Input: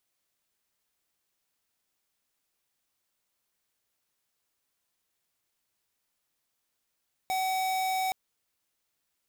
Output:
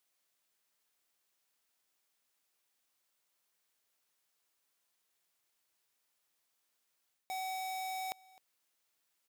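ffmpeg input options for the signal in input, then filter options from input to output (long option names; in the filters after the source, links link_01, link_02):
-f lavfi -i "aevalsrc='0.0355*(2*lt(mod(755*t,1),0.5)-1)':duration=0.82:sample_rate=44100"
-af "areverse,acompressor=threshold=-41dB:ratio=4,areverse,lowshelf=frequency=210:gain=-11,aecho=1:1:259:0.0708"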